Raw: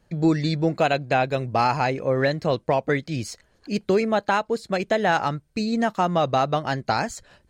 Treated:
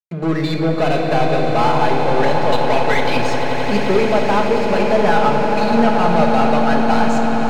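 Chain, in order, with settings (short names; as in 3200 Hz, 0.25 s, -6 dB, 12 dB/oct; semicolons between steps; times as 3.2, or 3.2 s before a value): 2.52–3.17 weighting filter D; backlash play -36.5 dBFS; overdrive pedal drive 25 dB, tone 1700 Hz, clips at -5.5 dBFS; notch 1800 Hz, Q 15; on a send: swelling echo 88 ms, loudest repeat 8, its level -12 dB; on the sum: shoebox room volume 1500 m³, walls mixed, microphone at 1.4 m; gain -5 dB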